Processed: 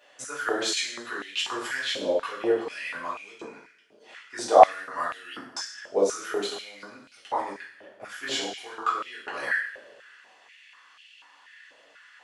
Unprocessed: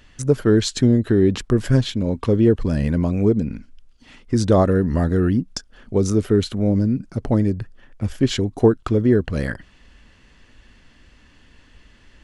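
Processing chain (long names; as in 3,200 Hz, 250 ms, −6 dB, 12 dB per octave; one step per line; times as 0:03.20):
coupled-rooms reverb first 0.63 s, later 2.4 s, from −24 dB, DRR −8.5 dB
high-pass on a step sequencer 4.1 Hz 590–2,800 Hz
level −10.5 dB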